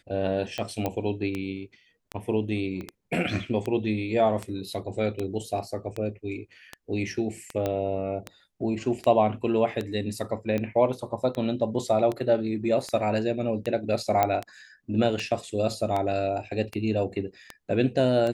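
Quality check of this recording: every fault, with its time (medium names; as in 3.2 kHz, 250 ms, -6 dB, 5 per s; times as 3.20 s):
tick 78 rpm -17 dBFS
0.86 s: pop -14 dBFS
2.81 s: pop -25 dBFS
7.66 s: pop -15 dBFS
14.23 s: pop -9 dBFS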